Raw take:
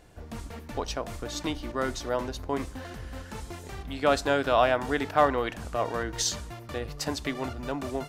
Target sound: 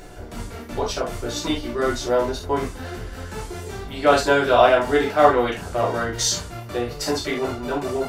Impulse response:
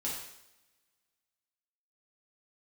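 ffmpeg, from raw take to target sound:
-filter_complex "[0:a]acompressor=mode=upward:threshold=-40dB:ratio=2.5[link_01];[1:a]atrim=start_sample=2205,afade=type=out:start_time=0.19:duration=0.01,atrim=end_sample=8820,asetrate=70560,aresample=44100[link_02];[link_01][link_02]afir=irnorm=-1:irlink=0,volume=8.5dB"

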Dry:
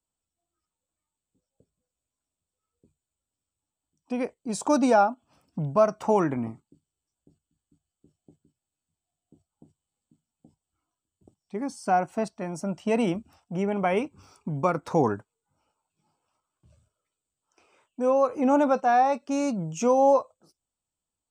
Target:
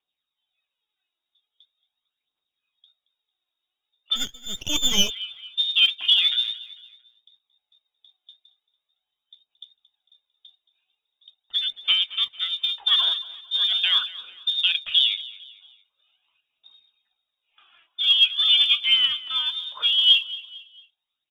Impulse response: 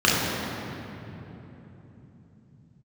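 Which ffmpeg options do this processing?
-filter_complex "[0:a]asettb=1/sr,asplit=3[link_01][link_02][link_03];[link_01]atrim=end=18.844[link_04];[link_02]atrim=start=18.84:end=20.1,asetpts=PTS-STARTPTS,afade=type=in:duration=0.004:curve=qsin,afade=type=out:start_time=1.256:duration=0.004:curve=qsin,highpass=frequency=490:poles=1[link_05];[link_03]atrim=start=20.096[link_06];[link_04][link_05]acrossfade=duration=0.004:curve1=hsin:curve2=qsin[link_07];[link_07][link_06]acrossfade=duration=0.004:curve1=qsin:curve2=hsin,asplit=2[link_08][link_09];[link_09]acompressor=threshold=-31dB:ratio=6,volume=-1dB[link_10];[link_08][link_10]amix=inputs=2:normalize=0,lowpass=frequency=3200:width_type=q:width=0.5098,lowpass=frequency=3200:width_type=q:width=0.6013,lowpass=frequency=3200:width_type=q:width=0.9,lowpass=frequency=3200:width_type=q:width=2.563,afreqshift=-3800,aphaser=in_gain=1:out_gain=1:delay=3.1:decay=0.52:speed=0.42:type=triangular,asplit=2[link_11][link_12];[link_12]aecho=0:1:225|450|675:0.126|0.0504|0.0201[link_13];[link_11][link_13]amix=inputs=2:normalize=0,asplit=3[link_14][link_15][link_16];[link_14]afade=type=out:start_time=4.15:duration=0.02[link_17];[link_15]aeval=exprs='max(val(0),0)':channel_layout=same,afade=type=in:start_time=4.15:duration=0.02,afade=type=out:start_time=5.09:duration=0.02[link_18];[link_16]afade=type=in:start_time=5.09:duration=0.02[link_19];[link_17][link_18][link_19]amix=inputs=3:normalize=0"

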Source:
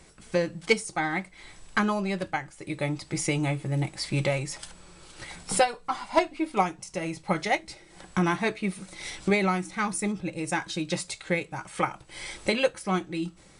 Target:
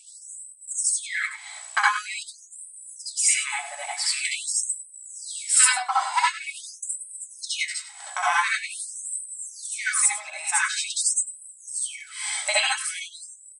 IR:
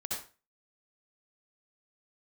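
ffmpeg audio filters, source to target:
-filter_complex "[0:a]equalizer=frequency=8100:width_type=o:width=0.23:gain=14,asplit=2[link_01][link_02];[link_02]adelay=99.13,volume=-12dB,highshelf=frequency=4000:gain=-2.23[link_03];[link_01][link_03]amix=inputs=2:normalize=0[link_04];[1:a]atrim=start_sample=2205,afade=type=out:start_time=0.14:duration=0.01,atrim=end_sample=6615[link_05];[link_04][link_05]afir=irnorm=-1:irlink=0,afftfilt=real='re*gte(b*sr/1024,580*pow(8000/580,0.5+0.5*sin(2*PI*0.46*pts/sr)))':imag='im*gte(b*sr/1024,580*pow(8000/580,0.5+0.5*sin(2*PI*0.46*pts/sr)))':win_size=1024:overlap=0.75,volume=6.5dB"

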